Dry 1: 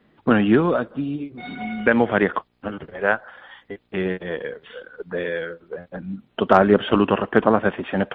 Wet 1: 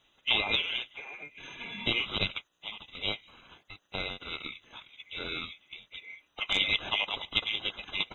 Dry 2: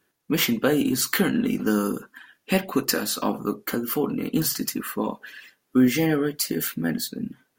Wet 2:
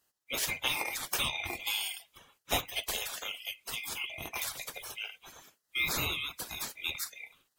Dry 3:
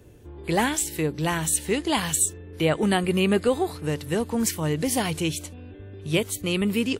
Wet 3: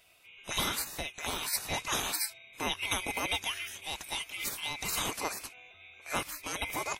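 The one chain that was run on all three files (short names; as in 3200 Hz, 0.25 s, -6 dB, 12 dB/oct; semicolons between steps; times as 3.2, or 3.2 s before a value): band-swap scrambler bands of 2000 Hz; spectral gate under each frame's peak -15 dB weak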